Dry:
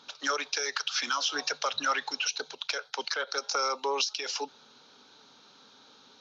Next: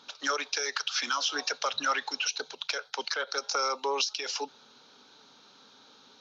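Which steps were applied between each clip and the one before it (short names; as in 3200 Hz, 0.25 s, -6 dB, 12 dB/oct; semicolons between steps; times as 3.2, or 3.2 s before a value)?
notches 50/100/150 Hz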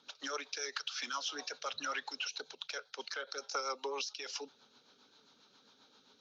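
rotary speaker horn 7.5 Hz; gain -6 dB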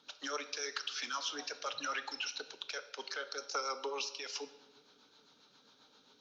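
shoebox room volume 650 m³, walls mixed, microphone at 0.44 m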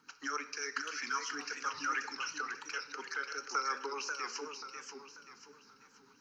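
fixed phaser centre 1500 Hz, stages 4; warbling echo 0.537 s, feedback 38%, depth 149 cents, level -6 dB; gain +4.5 dB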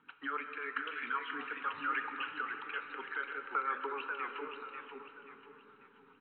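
digital reverb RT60 3.4 s, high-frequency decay 0.35×, pre-delay 95 ms, DRR 8.5 dB; downsampling 8000 Hz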